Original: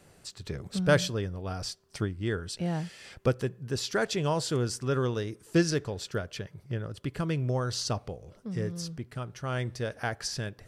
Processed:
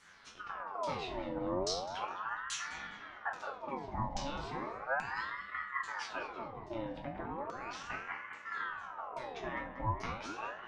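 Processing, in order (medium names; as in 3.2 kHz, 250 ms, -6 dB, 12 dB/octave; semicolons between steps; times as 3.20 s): compression 6:1, threshold -35 dBFS, peak gain reduction 16.5 dB; chord resonator F#2 minor, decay 0.58 s; LFO low-pass saw down 1.2 Hz 410–6300 Hz; filtered feedback delay 206 ms, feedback 74%, low-pass 1.6 kHz, level -8 dB; ring modulator with a swept carrier 1 kHz, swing 60%, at 0.36 Hz; trim +16 dB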